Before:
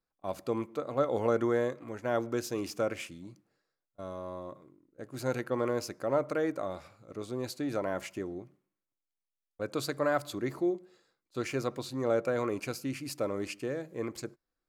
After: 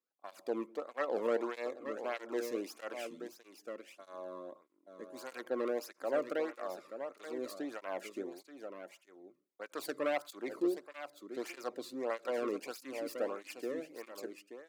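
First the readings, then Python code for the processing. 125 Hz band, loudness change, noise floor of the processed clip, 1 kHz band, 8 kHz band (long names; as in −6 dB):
below −20 dB, −6.0 dB, −74 dBFS, −5.5 dB, −7.5 dB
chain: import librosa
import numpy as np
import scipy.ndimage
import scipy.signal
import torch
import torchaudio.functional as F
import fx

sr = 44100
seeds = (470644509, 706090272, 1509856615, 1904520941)

p1 = fx.self_delay(x, sr, depth_ms=0.27)
p2 = scipy.signal.sosfilt(scipy.signal.butter(4, 210.0, 'highpass', fs=sr, output='sos'), p1)
p3 = p2 + fx.echo_single(p2, sr, ms=880, db=-9.0, dry=0)
p4 = fx.flanger_cancel(p3, sr, hz=1.6, depth_ms=1.4)
y = p4 * librosa.db_to_amplitude(-2.5)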